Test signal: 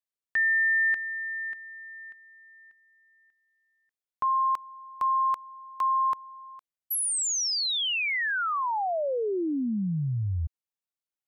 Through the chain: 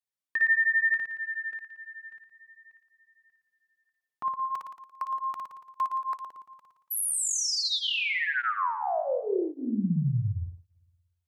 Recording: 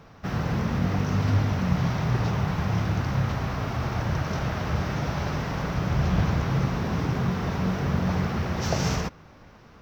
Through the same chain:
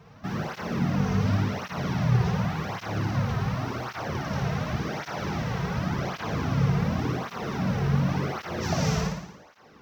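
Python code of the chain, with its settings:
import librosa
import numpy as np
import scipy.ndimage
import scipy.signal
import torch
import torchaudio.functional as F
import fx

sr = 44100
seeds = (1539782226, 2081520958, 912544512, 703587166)

y = fx.room_flutter(x, sr, wall_m=9.8, rt60_s=0.86)
y = fx.flanger_cancel(y, sr, hz=0.89, depth_ms=3.7)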